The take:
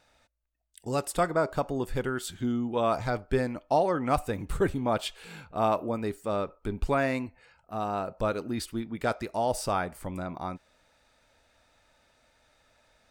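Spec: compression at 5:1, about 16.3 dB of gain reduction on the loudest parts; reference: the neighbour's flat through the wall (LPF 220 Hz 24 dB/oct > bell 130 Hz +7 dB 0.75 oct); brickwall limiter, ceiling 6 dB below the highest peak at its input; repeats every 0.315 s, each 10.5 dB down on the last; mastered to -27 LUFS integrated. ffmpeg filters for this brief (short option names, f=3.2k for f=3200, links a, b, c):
-af "acompressor=threshold=-39dB:ratio=5,alimiter=level_in=8.5dB:limit=-24dB:level=0:latency=1,volume=-8.5dB,lowpass=f=220:w=0.5412,lowpass=f=220:w=1.3066,equalizer=f=130:t=o:w=0.75:g=7,aecho=1:1:315|630|945:0.299|0.0896|0.0269,volume=20dB"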